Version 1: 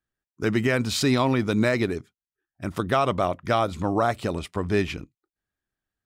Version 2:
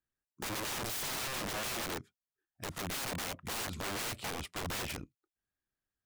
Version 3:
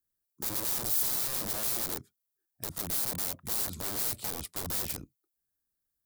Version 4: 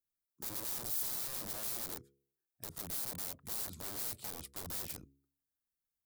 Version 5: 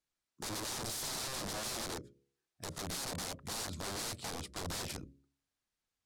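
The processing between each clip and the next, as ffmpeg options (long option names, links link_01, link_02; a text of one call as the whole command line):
ffmpeg -i in.wav -af "aeval=exprs='(mod(20*val(0)+1,2)-1)/20':channel_layout=same,volume=-6.5dB" out.wav
ffmpeg -i in.wav -filter_complex "[0:a]equalizer=frequency=3400:width=0.34:gain=-6.5,acrossover=split=200[link_01][link_02];[link_02]aexciter=amount=2.7:drive=6:freq=3800[link_03];[link_01][link_03]amix=inputs=2:normalize=0" out.wav
ffmpeg -i in.wav -af "bandreject=frequency=68.73:width_type=h:width=4,bandreject=frequency=137.46:width_type=h:width=4,bandreject=frequency=206.19:width_type=h:width=4,bandreject=frequency=274.92:width_type=h:width=4,bandreject=frequency=343.65:width_type=h:width=4,bandreject=frequency=412.38:width_type=h:width=4,bandreject=frequency=481.11:width_type=h:width=4,volume=-8dB" out.wav
ffmpeg -i in.wav -af "lowpass=6800,bandreject=frequency=60:width_type=h:width=6,bandreject=frequency=120:width_type=h:width=6,bandreject=frequency=180:width_type=h:width=6,bandreject=frequency=240:width_type=h:width=6,bandreject=frequency=300:width_type=h:width=6,bandreject=frequency=360:width_type=h:width=6,bandreject=frequency=420:width_type=h:width=6,bandreject=frequency=480:width_type=h:width=6,bandreject=frequency=540:width_type=h:width=6,bandreject=frequency=600:width_type=h:width=6,volume=7.5dB" out.wav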